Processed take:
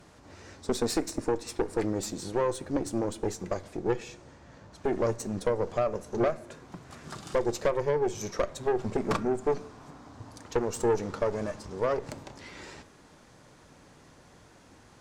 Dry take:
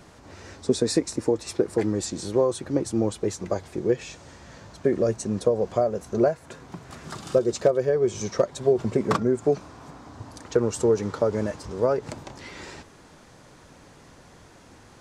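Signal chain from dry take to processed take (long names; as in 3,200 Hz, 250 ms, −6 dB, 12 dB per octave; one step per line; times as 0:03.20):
tube saturation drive 20 dB, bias 0.8
on a send at −13.5 dB: convolution reverb RT60 0.70 s, pre-delay 4 ms
0:03.77–0:04.73: on the sum: one half of a high-frequency compander decoder only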